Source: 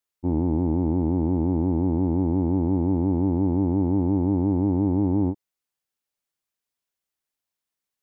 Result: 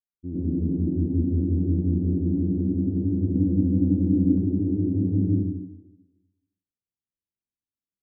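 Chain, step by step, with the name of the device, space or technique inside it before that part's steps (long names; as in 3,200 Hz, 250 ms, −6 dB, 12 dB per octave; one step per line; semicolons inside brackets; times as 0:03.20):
next room (low-pass filter 340 Hz 24 dB per octave; convolution reverb RT60 1.0 s, pre-delay 89 ms, DRR −7.5 dB)
0:03.35–0:04.38: comb filter 3.9 ms, depth 85%
level −8.5 dB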